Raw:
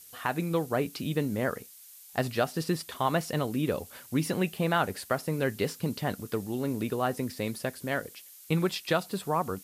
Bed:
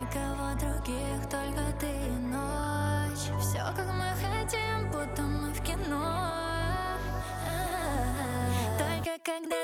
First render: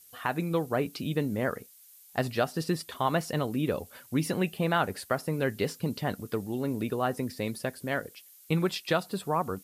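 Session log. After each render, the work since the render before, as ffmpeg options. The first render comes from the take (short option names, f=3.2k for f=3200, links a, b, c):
-af "afftdn=nr=6:nf=-51"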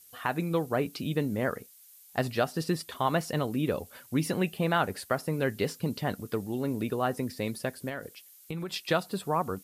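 -filter_complex "[0:a]asettb=1/sr,asplit=3[a][b][c];[a]atrim=end=7.894[d];[b]atrim=start=7.89:end=8.74,asetpts=PTS-STARTPTS,afade=t=in:d=0.004:c=qsin,afade=t=out:st=0.846:d=0.004:c=qsin,acompressor=threshold=-32dB:ratio=6:attack=3.2:release=140:knee=1:detection=peak[e];[c]atrim=start=8.736[f];[d][e]acrossfade=d=0.004:c1=hsin:c2=qsin[g];[g][f]acrossfade=d=0.004:c1=qsin:c2=hsin"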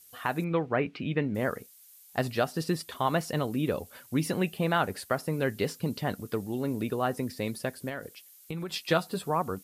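-filter_complex "[0:a]asettb=1/sr,asplit=3[a][b][c];[a]atrim=end=0.444[d];[b]atrim=start=0.44:end=1.35,asetpts=PTS-STARTPTS,afade=t=in:d=0.004:c=qsin,afade=t=out:st=0.906:d=0.004:c=qsin,lowpass=f=2.3k:t=q:w=2[e];[c]atrim=start=1.346[f];[d][e]acrossfade=d=0.004:c1=hsin:c2=qsin[g];[g][f]acrossfade=d=0.004:c1=qsin:c2=hsin,asettb=1/sr,asplit=3[h][i][j];[h]atrim=end=8.684[k];[i]atrim=start=8.68:end=9.3,asetpts=PTS-STARTPTS,afade=t=in:d=0.004:c=qsin,afade=t=out:st=0.616:d=0.004:c=qsin,asplit=2[l][m];[m]adelay=12,volume=-7dB[n];[l][n]amix=inputs=2:normalize=0,atrim=end_sample=27342[o];[j]atrim=start=9.296[p];[k][o]acrossfade=d=0.004:c1=hsin:c2=qsin[q];[q][p]acrossfade=d=0.004:c1=qsin:c2=hsin"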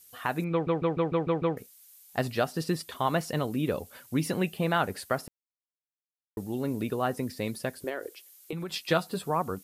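-filter_complex "[0:a]asettb=1/sr,asplit=3[a][b][c];[a]atrim=end=7.844[d];[b]atrim=start=7.84:end=8.53,asetpts=PTS-STARTPTS,afade=t=in:d=0.004:c=qsin,afade=t=out:st=0.686:d=0.004:c=qsin,lowshelf=f=250:t=q:w=3:g=-12.5[e];[c]atrim=start=8.526[f];[d][e]acrossfade=d=0.004:c1=hsin:c2=qsin[g];[g][f]acrossfade=d=0.004:c1=qsin:c2=hsin,asplit=10[h][i][j][k][l][m][n][o][p][q];[h]atrim=end=0.672[r];[i]atrim=start=0.518:end=0.672[s];[j]atrim=start=0.518:end=0.672[t];[k]atrim=start=0.518:end=0.672[u];[l]atrim=start=0.518:end=0.672[v];[m]atrim=start=0.518:end=0.672[w];[n]atrim=start=0.518:end=0.672[x];[o]atrim=start=1.568:end=5.28,asetpts=PTS-STARTPTS,afade=t=out:st=3.708:d=0.004:c=hsin[y];[p]atrim=start=5.28:end=6.37,asetpts=PTS-STARTPTS,volume=0[z];[q]atrim=start=6.37,asetpts=PTS-STARTPTS,afade=t=in:d=0.004:c=hsin[aa];[r][s]acrossfade=d=0.004:c1=hsin:c2=hsin[ab];[ab][t]acrossfade=d=0.004:c1=hsin:c2=hsin[ac];[ac][u]acrossfade=d=0.004:c1=hsin:c2=hsin[ad];[ad][v]acrossfade=d=0.004:c1=hsin:c2=hsin[ae];[ae][w]acrossfade=d=0.004:c1=hsin:c2=hsin[af];[af][x]acrossfade=d=0.004:c1=hsin:c2=hsin[ag];[y][z][aa]concat=n=3:v=0:a=1[ah];[ag][ah]acrossfade=d=0.004:c1=hsin:c2=hsin"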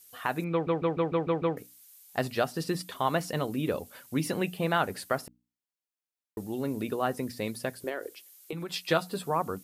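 -af "lowshelf=f=100:g=-6,bandreject=f=60:t=h:w=6,bandreject=f=120:t=h:w=6,bandreject=f=180:t=h:w=6,bandreject=f=240:t=h:w=6,bandreject=f=300:t=h:w=6"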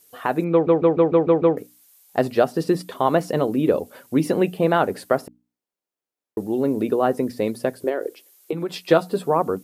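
-af "equalizer=f=410:t=o:w=2.7:g=12.5"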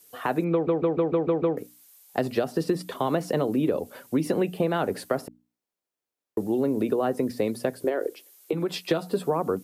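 -filter_complex "[0:a]acrossover=split=150|420|2100[a][b][c][d];[c]alimiter=limit=-15.5dB:level=0:latency=1[e];[a][b][e][d]amix=inputs=4:normalize=0,acompressor=threshold=-20dB:ratio=6"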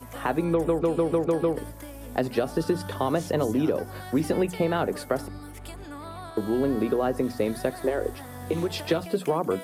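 -filter_complex "[1:a]volume=-8dB[a];[0:a][a]amix=inputs=2:normalize=0"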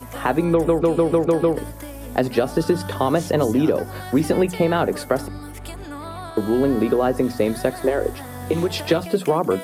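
-af "volume=6dB"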